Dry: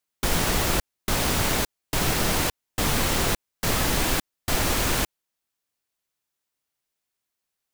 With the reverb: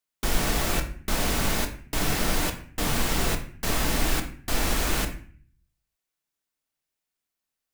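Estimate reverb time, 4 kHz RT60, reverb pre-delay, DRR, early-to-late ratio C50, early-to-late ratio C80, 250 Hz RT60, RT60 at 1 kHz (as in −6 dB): 0.50 s, 0.40 s, 3 ms, 4.0 dB, 10.0 dB, 14.0 dB, 0.70 s, 0.45 s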